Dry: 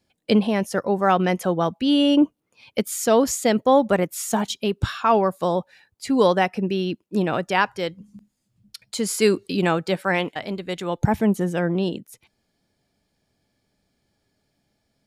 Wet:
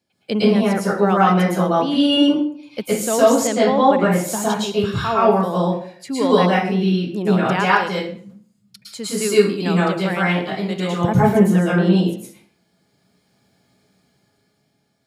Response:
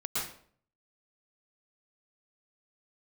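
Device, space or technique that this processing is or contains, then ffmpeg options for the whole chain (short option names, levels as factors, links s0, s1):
far laptop microphone: -filter_complex "[1:a]atrim=start_sample=2205[s0];[0:a][s0]afir=irnorm=-1:irlink=0,highpass=110,dynaudnorm=f=160:g=13:m=2.24,asettb=1/sr,asplit=3[s1][s2][s3];[s1]atrim=end=3.474[s4];[s2]atrim=start=3.47:end=4.11,asetpts=PTS-STARTPTS,afade=t=in:d=0.004:c=qsin,afade=t=out:st=0.636:d=0.004:c=qsin,lowpass=6100[s5];[s3]atrim=start=4.106[s6];[s4][s5]acrossfade=d=0.004:c1=hsin:c2=qsin[s7];[s7][s6]acrossfade=d=0.004:c1=qsin:c2=hsin,volume=0.891"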